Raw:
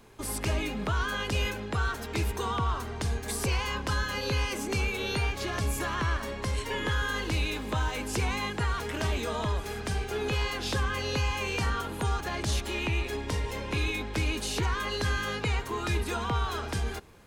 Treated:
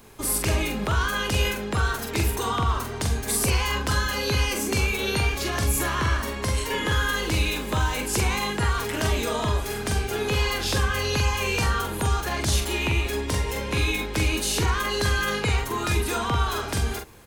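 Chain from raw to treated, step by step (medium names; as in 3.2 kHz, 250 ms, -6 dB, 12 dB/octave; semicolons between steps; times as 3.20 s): treble shelf 8.9 kHz +11 dB; doubling 44 ms -5 dB; trim +4 dB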